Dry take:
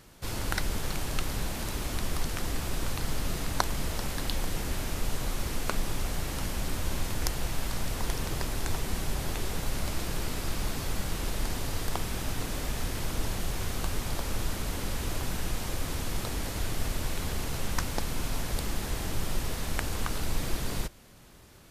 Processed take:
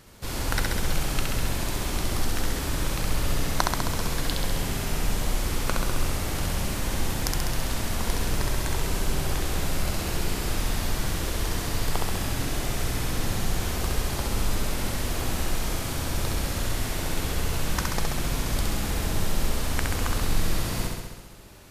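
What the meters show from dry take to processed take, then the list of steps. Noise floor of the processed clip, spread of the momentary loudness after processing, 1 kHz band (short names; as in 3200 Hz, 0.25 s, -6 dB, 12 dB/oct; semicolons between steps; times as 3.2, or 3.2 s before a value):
-31 dBFS, 2 LU, +5.0 dB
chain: flutter echo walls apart 11.4 m, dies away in 1.3 s; gain +2 dB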